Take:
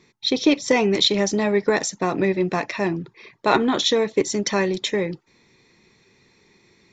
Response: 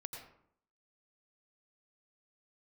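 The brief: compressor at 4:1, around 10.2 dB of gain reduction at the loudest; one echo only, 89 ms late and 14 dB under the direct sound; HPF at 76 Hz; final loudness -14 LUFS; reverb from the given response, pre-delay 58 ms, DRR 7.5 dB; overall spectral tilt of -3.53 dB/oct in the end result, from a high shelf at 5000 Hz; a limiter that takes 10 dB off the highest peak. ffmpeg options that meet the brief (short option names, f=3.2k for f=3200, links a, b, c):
-filter_complex "[0:a]highpass=76,highshelf=f=5k:g=7.5,acompressor=threshold=-25dB:ratio=4,alimiter=limit=-20.5dB:level=0:latency=1,aecho=1:1:89:0.2,asplit=2[a][b];[1:a]atrim=start_sample=2205,adelay=58[c];[b][c]afir=irnorm=-1:irlink=0,volume=-5dB[d];[a][d]amix=inputs=2:normalize=0,volume=16dB"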